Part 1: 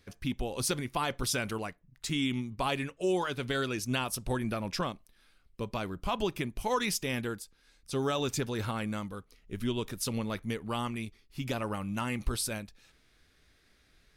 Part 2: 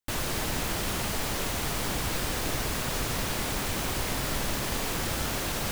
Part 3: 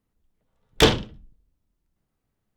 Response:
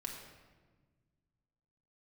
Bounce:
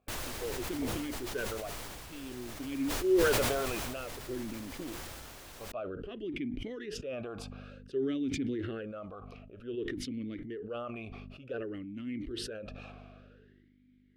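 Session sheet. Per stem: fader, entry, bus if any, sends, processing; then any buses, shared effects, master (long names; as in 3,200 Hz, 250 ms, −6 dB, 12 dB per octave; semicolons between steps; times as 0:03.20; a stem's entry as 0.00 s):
+1.5 dB, 0.00 s, no send, spectral tilt −3.5 dB per octave; mains hum 50 Hz, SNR 19 dB; formant filter swept between two vowels a-i 0.54 Hz
−5.5 dB, 0.00 s, no send, automatic ducking −13 dB, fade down 0.95 s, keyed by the first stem
−14.5 dB, 0.00 s, no send, downward compressor, threshold −20 dBFS, peak gain reduction 10 dB; Gaussian smoothing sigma 10 samples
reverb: not used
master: parametric band 180 Hz −6 dB 1.1 octaves; level that may fall only so fast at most 21 dB per second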